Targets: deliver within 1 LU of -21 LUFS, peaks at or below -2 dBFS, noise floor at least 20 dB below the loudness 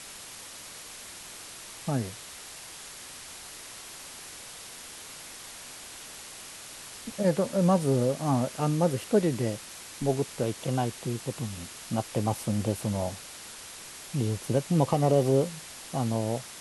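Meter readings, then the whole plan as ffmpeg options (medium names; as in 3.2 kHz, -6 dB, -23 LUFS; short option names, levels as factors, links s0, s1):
noise floor -45 dBFS; noise floor target -49 dBFS; loudness -28.5 LUFS; peak level -11.0 dBFS; loudness target -21.0 LUFS
-> -af "afftdn=nr=6:nf=-45"
-af "volume=2.37"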